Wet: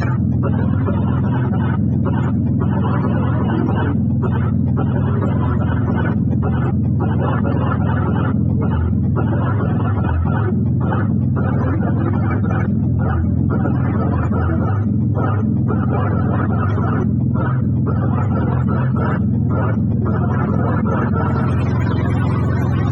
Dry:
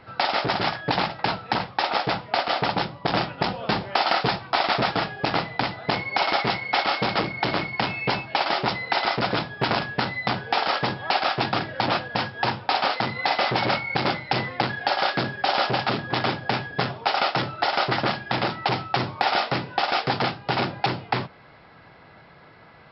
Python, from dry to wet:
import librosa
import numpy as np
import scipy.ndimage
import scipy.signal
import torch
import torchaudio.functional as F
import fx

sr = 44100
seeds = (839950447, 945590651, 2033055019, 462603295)

y = fx.octave_mirror(x, sr, pivot_hz=410.0)
y = fx.echo_feedback(y, sr, ms=101, feedback_pct=54, wet_db=-17.5)
y = fx.env_flatten(y, sr, amount_pct=100)